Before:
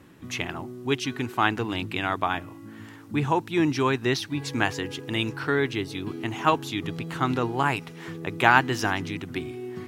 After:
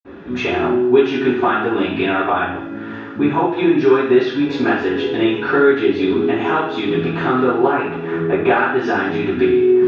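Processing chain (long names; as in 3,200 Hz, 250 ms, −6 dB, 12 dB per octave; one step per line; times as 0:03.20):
0:07.66–0:08.44: parametric band 4,700 Hz −9 dB 1.5 octaves
downward compressor 6 to 1, threshold −30 dBFS, peak gain reduction 17 dB
convolution reverb RT60 0.70 s, pre-delay 46 ms
level −1.5 dB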